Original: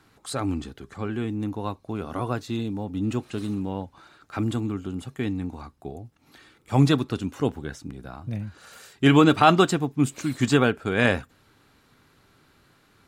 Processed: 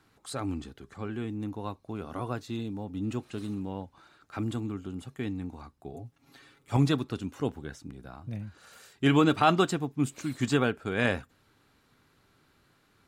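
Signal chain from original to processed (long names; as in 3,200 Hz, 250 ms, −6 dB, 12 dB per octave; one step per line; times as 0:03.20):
0:05.93–0:06.77: comb filter 7.3 ms, depth 98%
level −6 dB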